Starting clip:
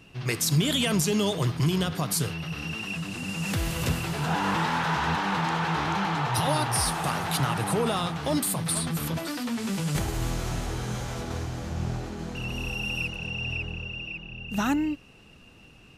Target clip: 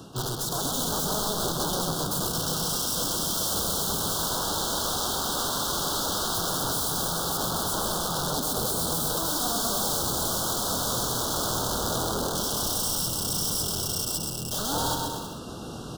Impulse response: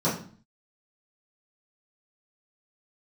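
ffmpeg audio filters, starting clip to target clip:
-filter_complex "[0:a]highpass=f=59:p=1,lowshelf=f=130:g=-7,acrossover=split=160[a][b];[b]acompressor=threshold=-32dB:ratio=10[c];[a][c]amix=inputs=2:normalize=0,alimiter=level_in=0.5dB:limit=-24dB:level=0:latency=1:release=471,volume=-0.5dB,areverse,acompressor=mode=upward:threshold=-36dB:ratio=2.5,areverse,aeval=exprs='(mod(44.7*val(0)+1,2)-1)/44.7':c=same,asuperstop=centerf=2200:order=8:qfactor=1.2,asplit=2[d][e];[e]aecho=0:1:130|234|317.2|383.8|437:0.631|0.398|0.251|0.158|0.1[f];[d][f]amix=inputs=2:normalize=0,volume=9dB"

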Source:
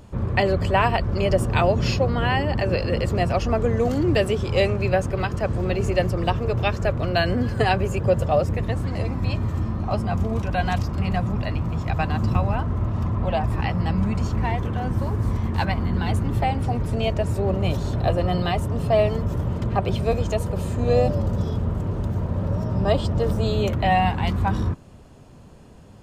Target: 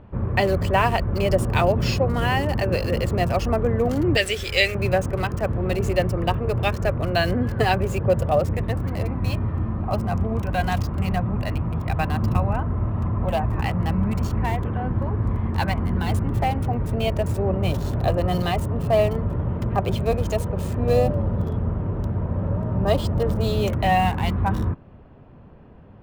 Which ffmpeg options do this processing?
-filter_complex "[0:a]asettb=1/sr,asplit=3[a][b][c];[a]atrim=end=4.174[d];[b]atrim=start=4.17:end=4.75,asetpts=PTS-STARTPTS,afade=t=in:d=0.004:c=qsin,afade=t=out:st=0.576:d=0.004:c=qsin,equalizer=f=125:t=o:w=1:g=-11,equalizer=f=250:t=o:w=1:g=-9,equalizer=f=1k:t=o:w=1:g=-12,equalizer=f=2k:t=o:w=1:g=11,equalizer=f=4k:t=o:w=1:g=6,equalizer=f=8k:t=o:w=1:g=7[e];[c]atrim=start=4.746[f];[d][e]acrossfade=d=0.004:c1=hsin:c2=qsin[g];[g][f]acrossfade=d=0.004:c1=qsin:c2=hsin,acrossover=split=2700[h][i];[i]acrusher=bits=6:mix=0:aa=0.000001[j];[h][j]amix=inputs=2:normalize=0"

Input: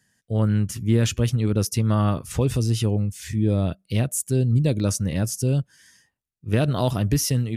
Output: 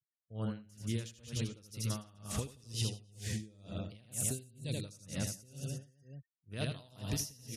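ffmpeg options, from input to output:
-filter_complex "[0:a]equalizer=f=340:t=o:w=0.77:g=-2.5,asplit=2[a][b];[b]aecho=0:1:80|176|291.2|429.4|595.3:0.631|0.398|0.251|0.158|0.1[c];[a][c]amix=inputs=2:normalize=0,adynamicequalizer=threshold=0.00891:dfrequency=4400:dqfactor=0.72:tfrequency=4400:tqfactor=0.72:attack=5:release=100:ratio=0.375:range=2:mode=boostabove:tftype=bell,acrossover=split=2800[d][e];[d]acompressor=threshold=-25dB:ratio=6[f];[f][e]amix=inputs=2:normalize=0,afftfilt=real='re*gte(hypot(re,im),0.00398)':imag='im*gte(hypot(re,im),0.00398)':win_size=1024:overlap=0.75,aeval=exprs='val(0)*pow(10,-27*(0.5-0.5*cos(2*PI*2.1*n/s))/20)':c=same,volume=-6.5dB"

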